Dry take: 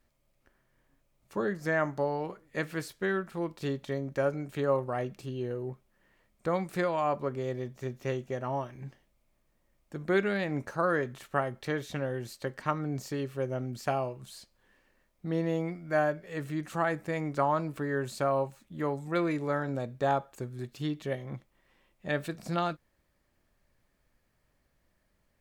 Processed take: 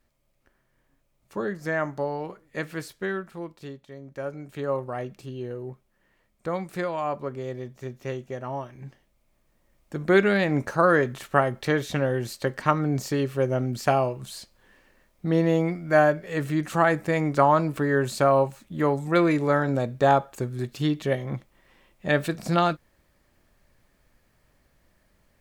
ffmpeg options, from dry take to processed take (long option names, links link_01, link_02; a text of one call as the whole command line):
ffmpeg -i in.wav -af "volume=21dB,afade=type=out:start_time=2.99:duration=0.88:silence=0.237137,afade=type=in:start_time=3.87:duration=0.91:silence=0.266073,afade=type=in:start_time=8.7:duration=1.62:silence=0.398107" out.wav